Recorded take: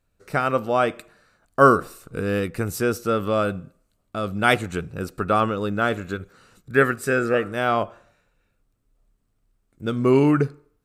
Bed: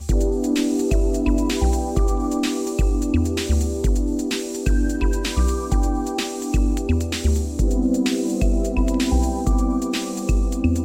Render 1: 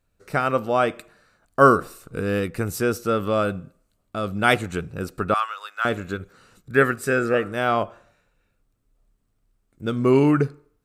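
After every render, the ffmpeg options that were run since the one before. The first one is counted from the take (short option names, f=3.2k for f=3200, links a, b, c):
-filter_complex "[0:a]asettb=1/sr,asplit=3[a][b][c];[a]atrim=end=5.344[d];[b]atrim=start=5.34:end=5.85,asetpts=PTS-STARTPTS,afade=t=in:d=0.004:c=qsin,afade=t=out:st=0.506:d=0.004:c=qsin,highpass=f=1k:w=0.5412,highpass=f=1k:w=1.3066[e];[c]atrim=start=5.846[f];[d][e]acrossfade=d=0.004:c1=hsin:c2=qsin[g];[g][f]acrossfade=d=0.004:c1=qsin:c2=hsin"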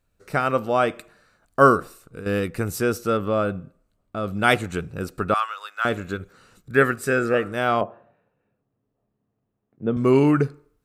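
-filter_complex "[0:a]asettb=1/sr,asplit=3[a][b][c];[a]atrim=end=3.174[d];[b]atrim=start=3.17:end=4.28,asetpts=PTS-STARTPTS,afade=t=in:d=0.004:c=qsin,afade=t=out:st=1.106:d=0.004:c=qsin,highshelf=f=2.9k:g=-9.5[e];[c]atrim=start=4.276[f];[d][e]acrossfade=d=0.004:c1=hsin:c2=qsin[g];[g][f]acrossfade=d=0.004:c1=qsin:c2=hsin,asettb=1/sr,asplit=3[h][i][j];[h]atrim=end=7.814[k];[i]atrim=start=7.81:end=9.97,asetpts=PTS-STARTPTS,afade=t=in:d=0.004:c=qsin,afade=t=out:st=2.156:d=0.004:c=qsin,highpass=130,equalizer=f=130:t=q:w=4:g=6,equalizer=f=220:t=q:w=4:g=4,equalizer=f=440:t=q:w=4:g=4,equalizer=f=720:t=q:w=4:g=4,equalizer=f=1.4k:t=q:w=4:g=-8,equalizer=f=2.2k:t=q:w=4:g=-9,lowpass=f=2.4k:w=0.5412,lowpass=f=2.4k:w=1.3066[l];[j]atrim=start=9.966[m];[k][l]acrossfade=d=0.004:c1=hsin:c2=qsin[n];[n][m]acrossfade=d=0.004:c1=qsin:c2=hsin,asplit=2[o][p];[o]atrim=end=2.26,asetpts=PTS-STARTPTS,afade=t=out:st=1.61:d=0.65:silence=0.298538[q];[p]atrim=start=2.26,asetpts=PTS-STARTPTS,afade=t=in:d=0.004:c=hsin:silence=0.298538[r];[q][r]concat=n=2:v=0:a=1"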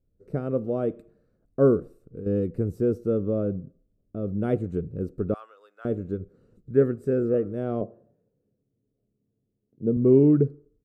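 -filter_complex "[0:a]firequalizer=gain_entry='entry(450,0);entry(850,-21);entry(2400,-27)':delay=0.05:min_phase=1,acrossover=split=2700[a][b];[b]acompressor=threshold=-55dB:ratio=4:attack=1:release=60[c];[a][c]amix=inputs=2:normalize=0"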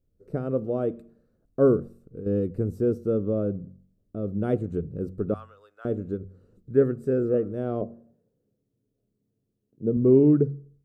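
-af "equalizer=f=2.2k:w=2.9:g=-3.5,bandreject=f=46.54:t=h:w=4,bandreject=f=93.08:t=h:w=4,bandreject=f=139.62:t=h:w=4,bandreject=f=186.16:t=h:w=4,bandreject=f=232.7:t=h:w=4"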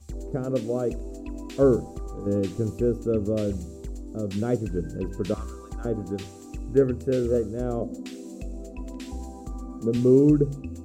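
-filter_complex "[1:a]volume=-17dB[a];[0:a][a]amix=inputs=2:normalize=0"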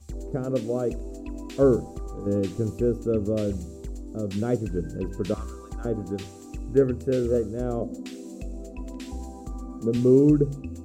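-af anull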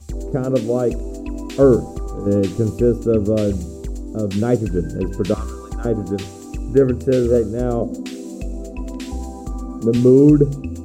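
-af "volume=8dB,alimiter=limit=-3dB:level=0:latency=1"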